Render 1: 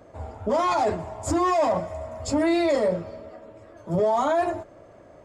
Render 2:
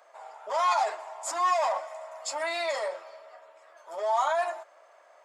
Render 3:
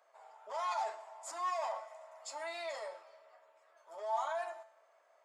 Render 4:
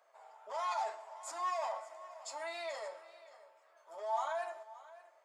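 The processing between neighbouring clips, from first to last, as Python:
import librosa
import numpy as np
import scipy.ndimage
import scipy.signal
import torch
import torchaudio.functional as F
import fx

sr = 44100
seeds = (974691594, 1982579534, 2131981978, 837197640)

y1 = scipy.signal.sosfilt(scipy.signal.butter(4, 750.0, 'highpass', fs=sr, output='sos'), x)
y2 = fx.comb_fb(y1, sr, f0_hz=220.0, decay_s=0.62, harmonics='all', damping=0.0, mix_pct=70)
y2 = y2 * librosa.db_to_amplitude(-2.5)
y3 = y2 + 10.0 ** (-18.0 / 20.0) * np.pad(y2, (int(574 * sr / 1000.0), 0))[:len(y2)]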